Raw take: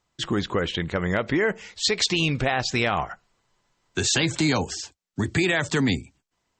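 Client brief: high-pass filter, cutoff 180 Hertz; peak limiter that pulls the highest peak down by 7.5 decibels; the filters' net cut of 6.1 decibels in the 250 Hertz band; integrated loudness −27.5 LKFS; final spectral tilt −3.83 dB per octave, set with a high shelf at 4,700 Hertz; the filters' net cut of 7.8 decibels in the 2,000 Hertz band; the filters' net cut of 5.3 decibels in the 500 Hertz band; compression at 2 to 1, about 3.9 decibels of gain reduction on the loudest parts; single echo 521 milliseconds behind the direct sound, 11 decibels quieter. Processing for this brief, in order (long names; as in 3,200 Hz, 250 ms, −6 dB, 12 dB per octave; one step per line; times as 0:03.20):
high-pass filter 180 Hz
parametric band 250 Hz −5 dB
parametric band 500 Hz −4.5 dB
parametric band 2,000 Hz −8 dB
high-shelf EQ 4,700 Hz −9 dB
downward compressor 2 to 1, threshold −31 dBFS
brickwall limiter −24.5 dBFS
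single-tap delay 521 ms −11 dB
level +8.5 dB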